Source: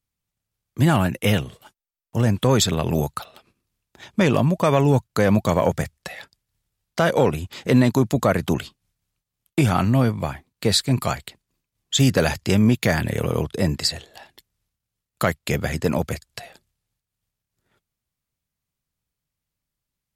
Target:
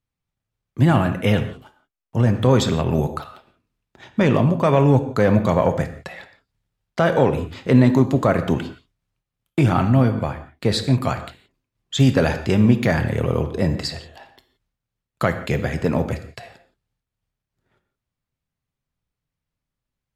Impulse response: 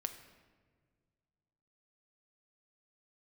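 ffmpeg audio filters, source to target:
-filter_complex "[0:a]lowpass=f=2.3k:p=1[a];[1:a]atrim=start_sample=2205,atrim=end_sample=6174,asetrate=33516,aresample=44100[b];[a][b]afir=irnorm=-1:irlink=0,volume=1.5dB"

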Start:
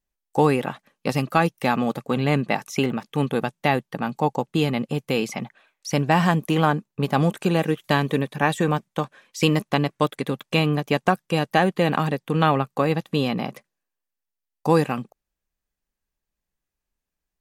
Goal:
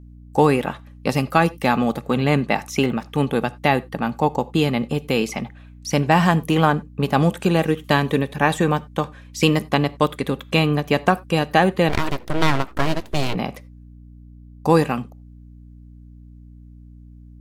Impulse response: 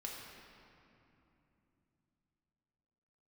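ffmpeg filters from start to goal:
-filter_complex "[0:a]aeval=exprs='val(0)+0.00631*(sin(2*PI*60*n/s)+sin(2*PI*2*60*n/s)/2+sin(2*PI*3*60*n/s)/3+sin(2*PI*4*60*n/s)/4+sin(2*PI*5*60*n/s)/5)':c=same,asplit=2[a][b];[1:a]atrim=start_sample=2205,atrim=end_sample=4410[c];[b][c]afir=irnorm=-1:irlink=0,volume=-10.5dB[d];[a][d]amix=inputs=2:normalize=0,asplit=3[e][f][g];[e]afade=t=out:st=11.88:d=0.02[h];[f]aeval=exprs='abs(val(0))':c=same,afade=t=in:st=11.88:d=0.02,afade=t=out:st=13.34:d=0.02[i];[g]afade=t=in:st=13.34:d=0.02[j];[h][i][j]amix=inputs=3:normalize=0,volume=1.5dB"

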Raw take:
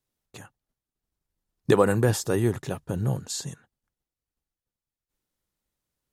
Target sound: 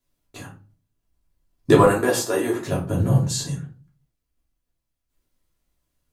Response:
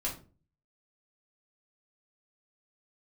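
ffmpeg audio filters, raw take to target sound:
-filter_complex "[0:a]asettb=1/sr,asplit=3[a][b][c];[a]atrim=end=1.844[d];[b]atrim=start=1.84:end=2.67,asetpts=PTS-STARTPTS,afade=t=in:d=0.004:c=qsin,afade=t=out:st=0.826:d=0.004:c=qsin,highpass=400[e];[c]atrim=start=2.666[f];[d][e]acrossfade=d=0.004:c1=hsin:c2=qsin[g];[g][f]acrossfade=d=0.004:c1=qsin:c2=hsin[h];[1:a]atrim=start_sample=2205[i];[h][i]afir=irnorm=-1:irlink=0,volume=3dB"

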